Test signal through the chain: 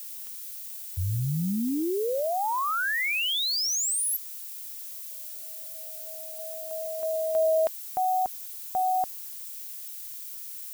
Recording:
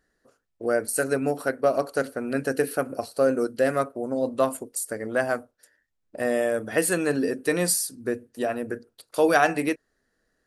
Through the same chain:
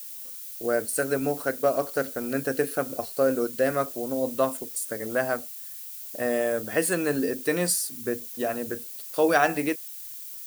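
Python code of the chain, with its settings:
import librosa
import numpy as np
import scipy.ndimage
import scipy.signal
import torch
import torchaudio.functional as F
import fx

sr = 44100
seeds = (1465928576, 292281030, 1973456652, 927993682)

y = fx.dmg_noise_colour(x, sr, seeds[0], colour='violet', level_db=-38.0)
y = y * librosa.db_to_amplitude(-1.5)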